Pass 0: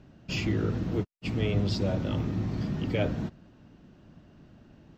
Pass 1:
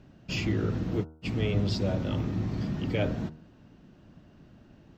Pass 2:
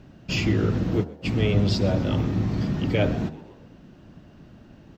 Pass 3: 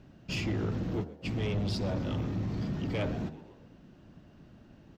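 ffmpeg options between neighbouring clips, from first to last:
ffmpeg -i in.wav -af "bandreject=frequency=78.44:width_type=h:width=4,bandreject=frequency=156.88:width_type=h:width=4,bandreject=frequency=235.32:width_type=h:width=4,bandreject=frequency=313.76:width_type=h:width=4,bandreject=frequency=392.2:width_type=h:width=4,bandreject=frequency=470.64:width_type=h:width=4,bandreject=frequency=549.08:width_type=h:width=4,bandreject=frequency=627.52:width_type=h:width=4,bandreject=frequency=705.96:width_type=h:width=4,bandreject=frequency=784.4:width_type=h:width=4,bandreject=frequency=862.84:width_type=h:width=4,bandreject=frequency=941.28:width_type=h:width=4,bandreject=frequency=1019.72:width_type=h:width=4,bandreject=frequency=1098.16:width_type=h:width=4,bandreject=frequency=1176.6:width_type=h:width=4,bandreject=frequency=1255.04:width_type=h:width=4,bandreject=frequency=1333.48:width_type=h:width=4,bandreject=frequency=1411.92:width_type=h:width=4,bandreject=frequency=1490.36:width_type=h:width=4" out.wav
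ffmpeg -i in.wav -filter_complex "[0:a]asplit=5[link_01][link_02][link_03][link_04][link_05];[link_02]adelay=127,afreqshift=95,volume=-20dB[link_06];[link_03]adelay=254,afreqshift=190,volume=-26.2dB[link_07];[link_04]adelay=381,afreqshift=285,volume=-32.4dB[link_08];[link_05]adelay=508,afreqshift=380,volume=-38.6dB[link_09];[link_01][link_06][link_07][link_08][link_09]amix=inputs=5:normalize=0,volume=6dB" out.wav
ffmpeg -i in.wav -af "asoftclip=type=tanh:threshold=-19.5dB,volume=-6.5dB" out.wav

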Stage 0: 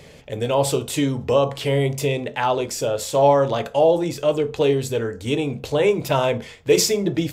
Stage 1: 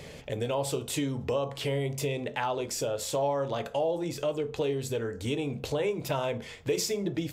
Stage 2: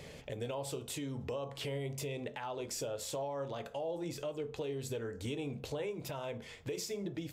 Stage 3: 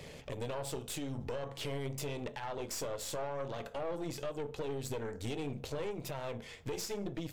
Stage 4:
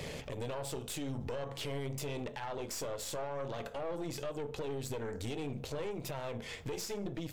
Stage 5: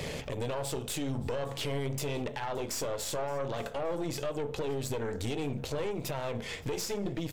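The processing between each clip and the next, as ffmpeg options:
ffmpeg -i in.wav -af "acompressor=threshold=-32dB:ratio=2.5" out.wav
ffmpeg -i in.wav -af "alimiter=level_in=1dB:limit=-24dB:level=0:latency=1:release=279,volume=-1dB,volume=-5dB" out.wav
ffmpeg -i in.wav -af "aeval=exprs='(tanh(70.8*val(0)+0.7)-tanh(0.7))/70.8':channel_layout=same,volume=4.5dB" out.wav
ffmpeg -i in.wav -af "alimiter=level_in=13dB:limit=-24dB:level=0:latency=1:release=223,volume=-13dB,volume=7dB" out.wav
ffmpeg -i in.wav -af "aecho=1:1:571|1142:0.0708|0.0227,volume=5dB" out.wav

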